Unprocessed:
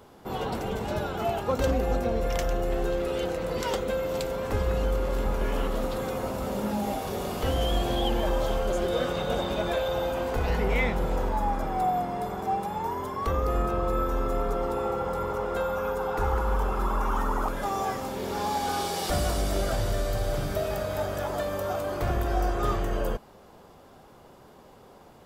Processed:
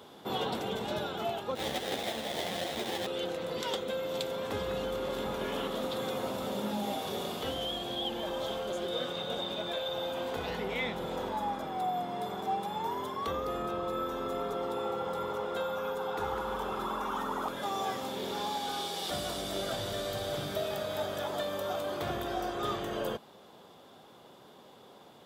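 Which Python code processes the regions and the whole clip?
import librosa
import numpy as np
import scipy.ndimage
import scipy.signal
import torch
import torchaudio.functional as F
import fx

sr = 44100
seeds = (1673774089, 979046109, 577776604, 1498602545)

y = fx.chain(x, sr, fx.band_shelf(hz=1000.0, db=15.0, octaves=1.3),
    fx.sample_hold(seeds[0], rate_hz=1300.0, jitter_pct=20),
    fx.ensemble(), at=(1.55, 3.07))
y = scipy.signal.sosfilt(scipy.signal.butter(2, 150.0, 'highpass', fs=sr, output='sos'), y)
y = fx.peak_eq(y, sr, hz=3500.0, db=11.5, octaves=0.39)
y = fx.rider(y, sr, range_db=10, speed_s=0.5)
y = F.gain(torch.from_numpy(y), -6.0).numpy()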